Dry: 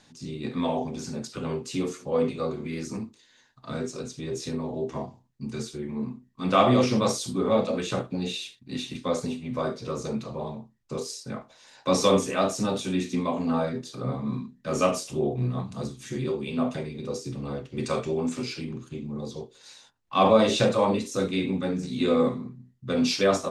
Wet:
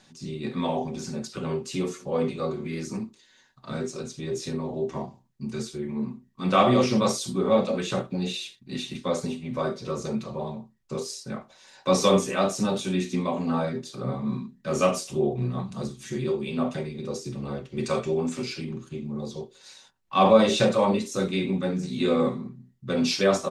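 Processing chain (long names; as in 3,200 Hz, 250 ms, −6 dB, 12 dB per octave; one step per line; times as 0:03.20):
comb filter 5.3 ms, depth 38%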